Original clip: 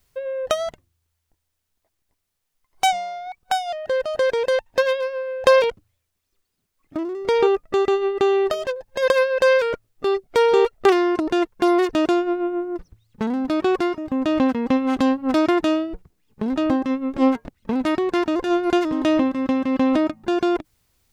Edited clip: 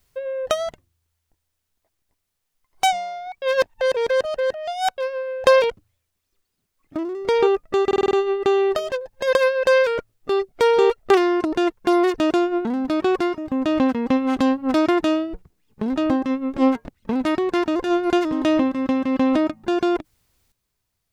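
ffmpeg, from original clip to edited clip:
-filter_complex "[0:a]asplit=9[a][b][c][d][e][f][g][h][i];[a]atrim=end=3.422[j];[b]atrim=start=3.418:end=4.982,asetpts=PTS-STARTPTS,areverse[k];[c]atrim=start=4.978:end=7.912[l];[d]atrim=start=7.858:end=7.912[m];[e]atrim=start=7.858:end=7.912[n];[f]atrim=start=7.858:end=7.912[o];[g]atrim=start=7.858:end=7.912[p];[h]atrim=start=7.858:end=12.402[q];[i]atrim=start=13.248[r];[j][k]acrossfade=d=0.004:c1=hsin:c2=hsin[s];[s][l]acrossfade=d=0.004:c1=hsin:c2=hsin[t];[t][m]acrossfade=d=0.004:c1=hsin:c2=hsin[u];[u][n]acrossfade=d=0.004:c1=hsin:c2=hsin[v];[v][o]acrossfade=d=0.004:c1=hsin:c2=hsin[w];[w][p]acrossfade=d=0.004:c1=hsin:c2=hsin[x];[x][q]acrossfade=d=0.004:c1=hsin:c2=hsin[y];[y][r]acrossfade=d=0.004:c1=hsin:c2=hsin"

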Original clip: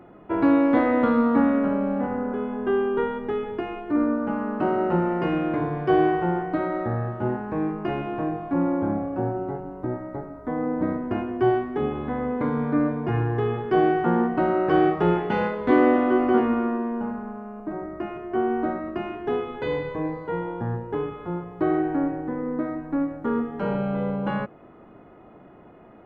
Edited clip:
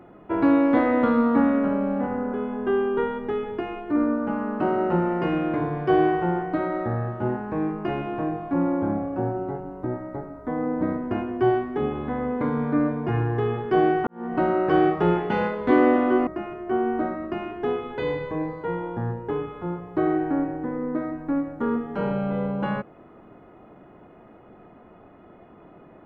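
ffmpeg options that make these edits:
-filter_complex "[0:a]asplit=3[a][b][c];[a]atrim=end=14.07,asetpts=PTS-STARTPTS,afade=t=out:st=14.066:d=0.004:c=hsin[d];[b]atrim=start=14.07:end=16.272,asetpts=PTS-STARTPTS,afade=t=in:d=0.29:c=qua[e];[c]atrim=start=17.908[f];[d][e]concat=n=2:v=0:a=1[g];[g][f]acrossfade=d=0.004:c1=hsin:c2=hsin"

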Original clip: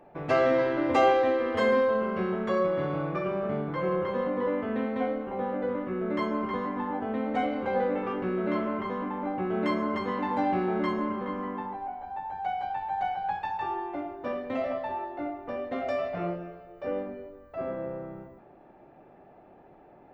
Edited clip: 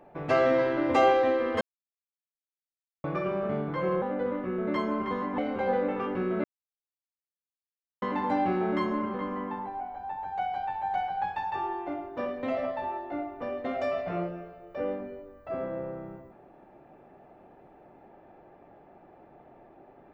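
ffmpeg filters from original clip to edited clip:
-filter_complex "[0:a]asplit=7[a][b][c][d][e][f][g];[a]atrim=end=1.61,asetpts=PTS-STARTPTS,afade=t=out:st=1.606:d=0.004:c=hsin[h];[b]atrim=start=1.61:end=3.04,asetpts=PTS-STARTPTS,volume=0[i];[c]atrim=start=3.04:end=4.022,asetpts=PTS-STARTPTS,afade=t=in:d=0.004:c=hsin[j];[d]atrim=start=5.448:end=6.812[k];[e]atrim=start=7.448:end=8.51,asetpts=PTS-STARTPTS,afade=t=out:st=1.058:d=0.004:c=hsin[l];[f]atrim=start=8.51:end=10.09,asetpts=PTS-STARTPTS,volume=0[m];[g]atrim=start=10.09,asetpts=PTS-STARTPTS,afade=t=in:d=0.004:c=hsin[n];[h][i][j]concat=n=3:v=0:a=1[o];[o][k]acrossfade=d=0.004:c1=hsin:c2=hsin[p];[l][m][n]concat=n=3:v=0:a=1[q];[p][q]acrossfade=d=0.004:c1=hsin:c2=hsin"

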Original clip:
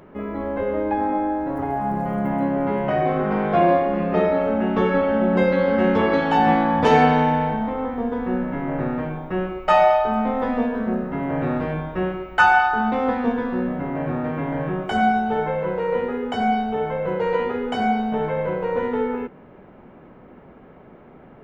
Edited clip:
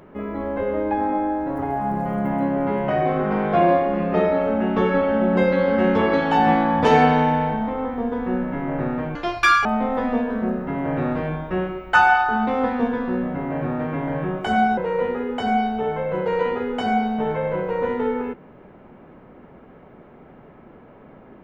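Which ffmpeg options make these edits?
-filter_complex "[0:a]asplit=4[a][b][c][d];[a]atrim=end=9.154[e];[b]atrim=start=9.15:end=10.1,asetpts=PTS-STARTPTS,asetrate=83349,aresample=44100[f];[c]atrim=start=10.096:end=15.222[g];[d]atrim=start=15.708[h];[e][f]acrossfade=d=0.004:c1=hsin:c2=hsin[i];[i][g]acrossfade=d=0.004:c1=hsin:c2=hsin[j];[j][h]acrossfade=d=0.004:c1=hsin:c2=hsin"

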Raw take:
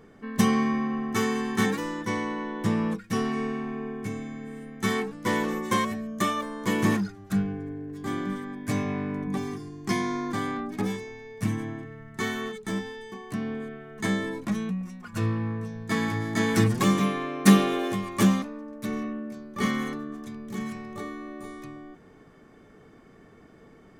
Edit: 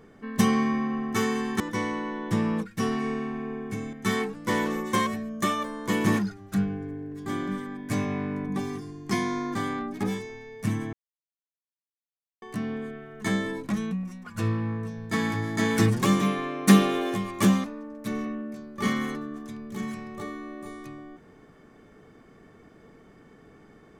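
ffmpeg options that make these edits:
-filter_complex "[0:a]asplit=5[a][b][c][d][e];[a]atrim=end=1.602[f];[b]atrim=start=1.928:end=4.262[g];[c]atrim=start=4.708:end=11.71,asetpts=PTS-STARTPTS,afade=t=out:st=6.998:d=0.004:c=hsin[h];[d]atrim=start=11.71:end=13.2,asetpts=PTS-STARTPTS,volume=0[i];[e]atrim=start=13.2,asetpts=PTS-STARTPTS,afade=t=in:d=0.004:c=hsin[j];[f][g]acrossfade=d=0.004:c1=hsin:c2=hsin[k];[h][i][j]concat=n=3:v=0:a=1[l];[k][l]acrossfade=d=0.004:c1=hsin:c2=hsin"

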